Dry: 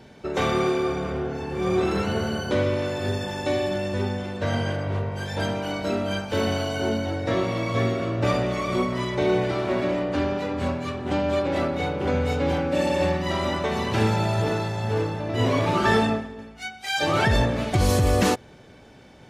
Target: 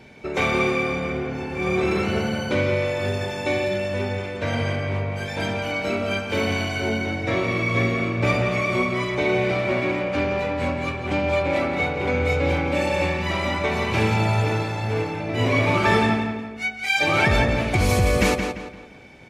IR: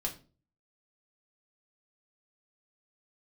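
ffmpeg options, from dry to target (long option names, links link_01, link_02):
-filter_complex "[0:a]equalizer=frequency=2300:width=6:gain=12.5,asplit=2[link_01][link_02];[link_02]adelay=172,lowpass=frequency=4600:poles=1,volume=-6dB,asplit=2[link_03][link_04];[link_04]adelay=172,lowpass=frequency=4600:poles=1,volume=0.37,asplit=2[link_05][link_06];[link_06]adelay=172,lowpass=frequency=4600:poles=1,volume=0.37,asplit=2[link_07][link_08];[link_08]adelay=172,lowpass=frequency=4600:poles=1,volume=0.37[link_09];[link_03][link_05][link_07][link_09]amix=inputs=4:normalize=0[link_10];[link_01][link_10]amix=inputs=2:normalize=0"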